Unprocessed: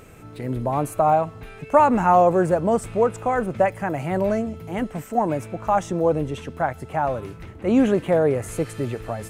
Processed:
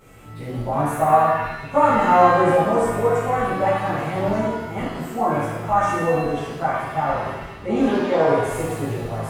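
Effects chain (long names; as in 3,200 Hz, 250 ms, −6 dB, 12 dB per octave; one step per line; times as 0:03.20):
0:07.86–0:08.27: loudspeaker in its box 210–5,100 Hz, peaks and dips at 1,000 Hz +10 dB, 1,600 Hz +4 dB, 3,700 Hz +10 dB
reverb with rising layers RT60 1 s, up +7 semitones, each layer −8 dB, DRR −11 dB
level −10.5 dB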